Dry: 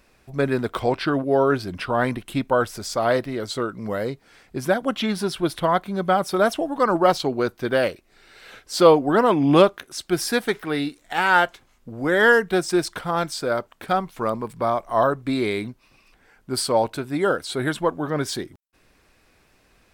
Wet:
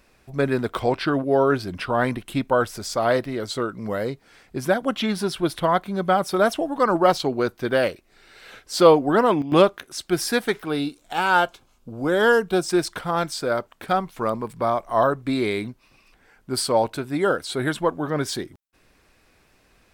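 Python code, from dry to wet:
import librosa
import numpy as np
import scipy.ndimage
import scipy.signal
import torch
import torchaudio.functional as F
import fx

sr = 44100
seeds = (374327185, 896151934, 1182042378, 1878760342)

y = fx.peak_eq(x, sr, hz=1900.0, db=-14.0, octaves=0.29, at=(10.62, 12.66))
y = fx.edit(y, sr, fx.fade_down_up(start_s=9.01, length_s=0.92, db=-13.0, fade_s=0.41, curve='log'), tone=tone)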